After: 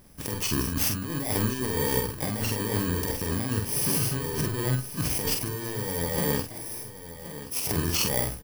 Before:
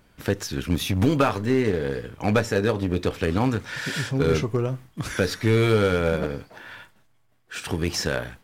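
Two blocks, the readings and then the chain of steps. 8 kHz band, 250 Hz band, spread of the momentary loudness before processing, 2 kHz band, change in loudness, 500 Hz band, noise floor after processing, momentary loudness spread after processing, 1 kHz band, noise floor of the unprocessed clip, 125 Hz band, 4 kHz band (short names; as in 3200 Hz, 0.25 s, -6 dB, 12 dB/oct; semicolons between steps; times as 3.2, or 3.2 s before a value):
+7.5 dB, -6.0 dB, 11 LU, -6.0 dB, -3.0 dB, -8.5 dB, -42 dBFS, 10 LU, -5.5 dB, -61 dBFS, -4.0 dB, 0.0 dB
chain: FFT order left unsorted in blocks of 32 samples; negative-ratio compressor -28 dBFS, ratio -1; doubler 47 ms -4.5 dB; on a send: feedback echo 1.075 s, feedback 23%, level -13 dB; on the sum: gain -1 dB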